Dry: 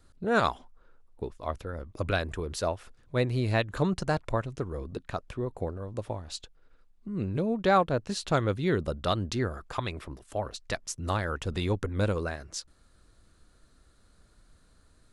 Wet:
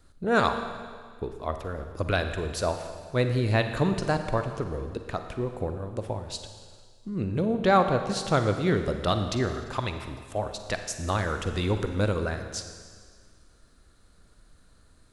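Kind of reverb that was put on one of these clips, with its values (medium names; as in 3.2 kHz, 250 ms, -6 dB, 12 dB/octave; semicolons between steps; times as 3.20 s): Schroeder reverb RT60 1.8 s, DRR 7 dB; trim +2 dB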